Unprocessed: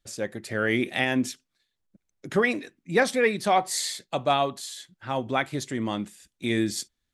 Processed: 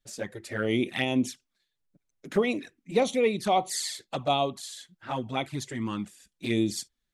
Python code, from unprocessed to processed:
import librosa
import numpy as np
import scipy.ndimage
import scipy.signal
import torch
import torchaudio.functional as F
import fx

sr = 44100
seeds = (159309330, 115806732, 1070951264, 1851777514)

y = fx.env_flanger(x, sr, rest_ms=7.7, full_db=-21.0)